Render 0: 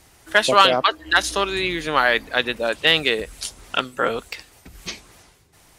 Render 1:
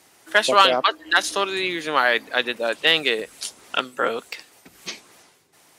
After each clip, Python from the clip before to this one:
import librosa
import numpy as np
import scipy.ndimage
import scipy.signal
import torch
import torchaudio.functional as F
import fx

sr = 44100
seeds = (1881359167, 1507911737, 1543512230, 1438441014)

y = scipy.signal.sosfilt(scipy.signal.butter(2, 220.0, 'highpass', fs=sr, output='sos'), x)
y = y * librosa.db_to_amplitude(-1.0)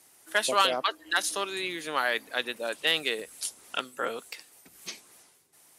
y = fx.peak_eq(x, sr, hz=11000.0, db=11.5, octaves=1.1)
y = y * librosa.db_to_amplitude(-9.0)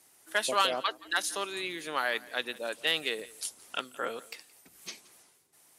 y = x + 10.0 ** (-21.5 / 20.0) * np.pad(x, (int(172 * sr / 1000.0), 0))[:len(x)]
y = y * librosa.db_to_amplitude(-3.0)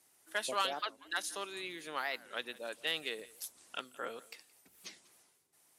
y = fx.record_warp(x, sr, rpm=45.0, depth_cents=250.0)
y = y * librosa.db_to_amplitude(-7.0)